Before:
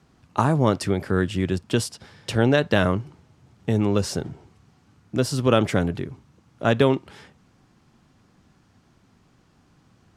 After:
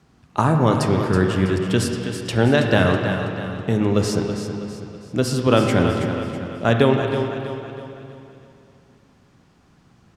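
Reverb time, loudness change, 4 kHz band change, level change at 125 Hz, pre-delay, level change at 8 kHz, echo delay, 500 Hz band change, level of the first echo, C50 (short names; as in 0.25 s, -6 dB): 2.9 s, +2.5 dB, +3.0 dB, +4.0 dB, 25 ms, +2.0 dB, 0.325 s, +3.5 dB, -9.0 dB, 2.5 dB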